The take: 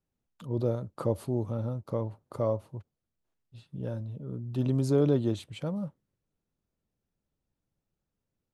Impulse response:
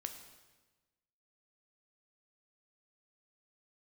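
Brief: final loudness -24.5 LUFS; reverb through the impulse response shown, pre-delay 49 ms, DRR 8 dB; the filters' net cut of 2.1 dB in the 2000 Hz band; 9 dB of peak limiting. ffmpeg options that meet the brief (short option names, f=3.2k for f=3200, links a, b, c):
-filter_complex "[0:a]equalizer=f=2k:t=o:g=-3,alimiter=limit=-23dB:level=0:latency=1,asplit=2[a][b];[1:a]atrim=start_sample=2205,adelay=49[c];[b][c]afir=irnorm=-1:irlink=0,volume=-6dB[d];[a][d]amix=inputs=2:normalize=0,volume=10.5dB"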